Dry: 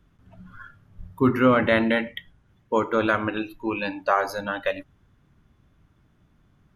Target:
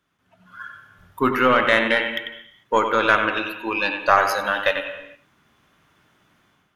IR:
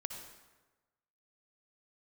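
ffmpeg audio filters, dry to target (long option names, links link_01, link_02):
-filter_complex "[0:a]highpass=frequency=1000:poles=1,aeval=exprs='0.422*(cos(1*acos(clip(val(0)/0.422,-1,1)))-cos(1*PI/2))+0.0133*(cos(6*acos(clip(val(0)/0.422,-1,1)))-cos(6*PI/2))':channel_layout=same,dynaudnorm=framelen=380:gausssize=3:maxgain=12dB,asplit=2[link_01][link_02];[link_02]highshelf=frequency=3900:width_type=q:width=3:gain=-6.5[link_03];[1:a]atrim=start_sample=2205,afade=type=out:start_time=0.41:duration=0.01,atrim=end_sample=18522,adelay=94[link_04];[link_03][link_04]afir=irnorm=-1:irlink=0,volume=-6.5dB[link_05];[link_01][link_05]amix=inputs=2:normalize=0"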